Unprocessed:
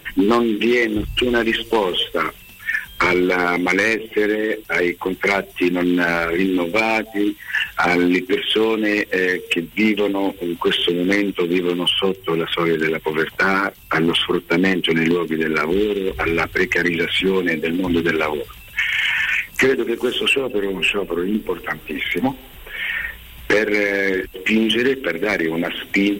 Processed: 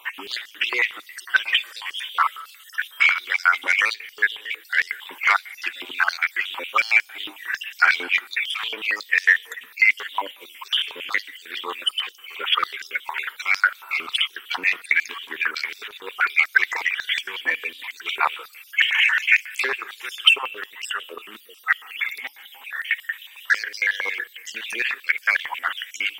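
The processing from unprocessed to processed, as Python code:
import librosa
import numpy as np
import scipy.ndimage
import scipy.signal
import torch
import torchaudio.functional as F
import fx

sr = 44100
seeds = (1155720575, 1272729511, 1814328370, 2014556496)

y = fx.spec_dropout(x, sr, seeds[0], share_pct=36)
y = fx.rev_freeverb(y, sr, rt60_s=1.9, hf_ratio=0.65, predelay_ms=20, drr_db=19.5)
y = fx.filter_held_highpass(y, sr, hz=11.0, low_hz=970.0, high_hz=5300.0)
y = F.gain(torch.from_numpy(y), -2.5).numpy()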